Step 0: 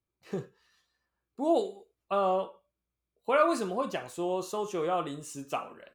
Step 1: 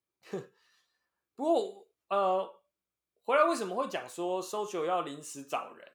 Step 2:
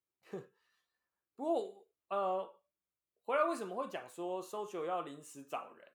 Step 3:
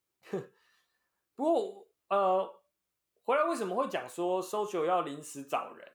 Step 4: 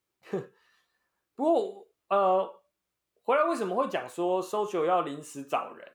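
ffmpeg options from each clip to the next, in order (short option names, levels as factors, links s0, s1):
-af "highpass=f=330:p=1"
-af "equalizer=f=5200:w=0.93:g=-6.5,volume=0.473"
-af "alimiter=level_in=1.33:limit=0.0631:level=0:latency=1:release=247,volume=0.75,volume=2.66"
-af "highshelf=f=5100:g=-5.5,volume=1.5"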